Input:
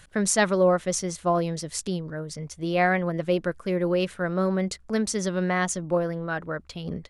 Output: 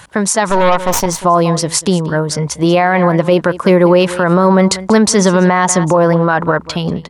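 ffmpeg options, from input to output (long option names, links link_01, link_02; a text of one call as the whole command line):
ffmpeg -i in.wav -filter_complex "[0:a]asplit=2[link_01][link_02];[link_02]acompressor=threshold=-32dB:ratio=16,volume=1.5dB[link_03];[link_01][link_03]amix=inputs=2:normalize=0,highpass=83,asettb=1/sr,asplit=3[link_04][link_05][link_06];[link_04]atrim=end=0.494[link_07];[link_05]atrim=start=0.49:end=1.06,asetpts=PTS-STARTPTS,afade=type=in:duration=0.004:curve=qsin,afade=type=out:start_time=0.566:duration=0.004:curve=qsin,aeval=exprs='0.335*(cos(1*acos(clip(val(0)/0.335,-1,1)))-cos(1*PI/2))+0.0841*(cos(6*acos(clip(val(0)/0.335,-1,1)))-cos(6*PI/2))':channel_layout=same[link_08];[link_06]atrim=start=1.056[link_09];[link_07][link_08]acrossfade=duration=0.004:curve1=hsin:curve2=qsin[link_10];[link_10][link_09]acrossfade=duration=0.004:curve1=qsin:curve2=hsin,asettb=1/sr,asplit=3[link_11][link_12][link_13];[link_11]atrim=end=4.834[link_14];[link_12]atrim=start=4.83:end=6.73,asetpts=PTS-STARTPTS,afade=type=in:duration=0.004:curve=qsin,afade=type=out:start_time=1.896:duration=0.004:curve=qsin,highshelf=frequency=9300:gain=-5.5[link_15];[link_13]atrim=start=6.726[link_16];[link_14][link_15]acrossfade=duration=0.004:curve1=hsin:curve2=qsin[link_17];[link_17][link_16]acrossfade=duration=0.004:curve1=qsin:curve2=hsin,aecho=1:1:189:0.119,dynaudnorm=framelen=110:gausssize=13:maxgain=11.5dB,equalizer=frequency=950:width_type=o:width=0.54:gain=12,alimiter=level_in=7.5dB:limit=-1dB:release=50:level=0:latency=1,volume=-1dB" out.wav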